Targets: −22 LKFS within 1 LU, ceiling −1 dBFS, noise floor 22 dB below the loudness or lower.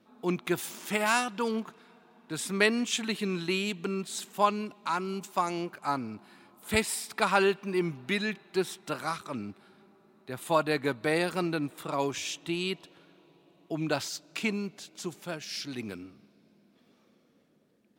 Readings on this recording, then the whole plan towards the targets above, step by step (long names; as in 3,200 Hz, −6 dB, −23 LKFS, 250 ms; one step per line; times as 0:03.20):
integrated loudness −31.0 LKFS; sample peak −8.0 dBFS; target loudness −22.0 LKFS
→ level +9 dB
brickwall limiter −1 dBFS